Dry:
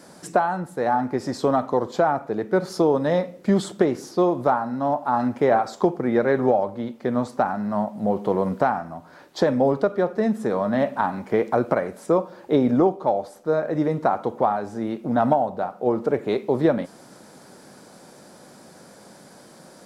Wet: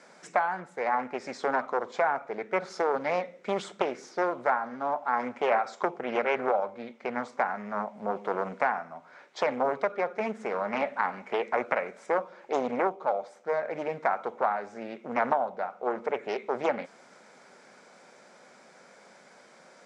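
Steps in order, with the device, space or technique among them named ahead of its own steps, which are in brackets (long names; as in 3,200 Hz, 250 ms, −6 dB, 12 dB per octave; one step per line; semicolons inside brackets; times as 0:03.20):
full-range speaker at full volume (highs frequency-modulated by the lows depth 0.8 ms; loudspeaker in its box 290–7,500 Hz, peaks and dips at 310 Hz −9 dB, 1,400 Hz +4 dB, 2,200 Hz +10 dB, 4,500 Hz −4 dB)
level −6 dB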